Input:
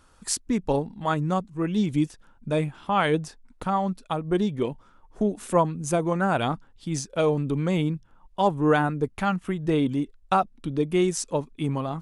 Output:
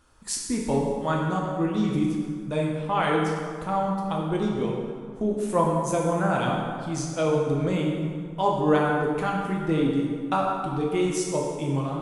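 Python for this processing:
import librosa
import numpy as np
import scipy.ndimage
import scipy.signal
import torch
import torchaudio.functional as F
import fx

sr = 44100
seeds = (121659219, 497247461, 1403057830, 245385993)

y = fx.rev_plate(x, sr, seeds[0], rt60_s=2.0, hf_ratio=0.65, predelay_ms=0, drr_db=-2.0)
y = y * librosa.db_to_amplitude(-4.0)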